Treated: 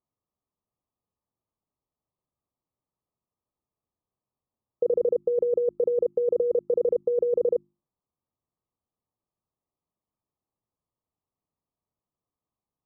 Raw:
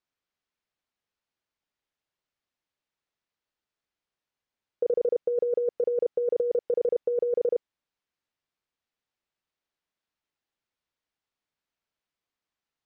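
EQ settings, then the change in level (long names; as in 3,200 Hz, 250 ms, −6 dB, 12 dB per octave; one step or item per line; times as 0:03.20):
linear-phase brick-wall low-pass 1,300 Hz
parametric band 110 Hz +9.5 dB 2.7 octaves
mains-hum notches 50/100/150/200/250/300/350 Hz
0.0 dB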